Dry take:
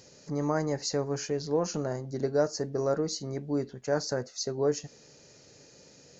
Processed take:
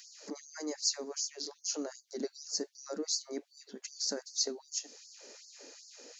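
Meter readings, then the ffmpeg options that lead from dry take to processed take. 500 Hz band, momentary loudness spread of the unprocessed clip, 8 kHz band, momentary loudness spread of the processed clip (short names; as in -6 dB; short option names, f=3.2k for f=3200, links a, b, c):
-13.0 dB, 6 LU, n/a, 18 LU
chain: -filter_complex "[0:a]acrossover=split=250|3000[a][b][c];[b]acompressor=threshold=-45dB:ratio=4[d];[a][d][c]amix=inputs=3:normalize=0,afftfilt=real='re*gte(b*sr/1024,200*pow(4400/200,0.5+0.5*sin(2*PI*2.6*pts/sr)))':imag='im*gte(b*sr/1024,200*pow(4400/200,0.5+0.5*sin(2*PI*2.6*pts/sr)))':win_size=1024:overlap=0.75,volume=4dB"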